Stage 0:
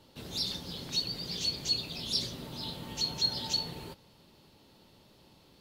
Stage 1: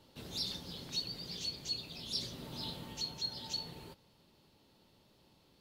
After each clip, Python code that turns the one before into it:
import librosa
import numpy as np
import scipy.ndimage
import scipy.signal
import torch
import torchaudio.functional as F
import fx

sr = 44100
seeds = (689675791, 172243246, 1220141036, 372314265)

y = fx.rider(x, sr, range_db=4, speed_s=0.5)
y = F.gain(torch.from_numpy(y), -6.5).numpy()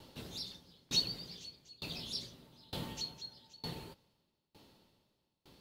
y = fx.tremolo_decay(x, sr, direction='decaying', hz=1.1, depth_db=31)
y = F.gain(torch.from_numpy(y), 8.5).numpy()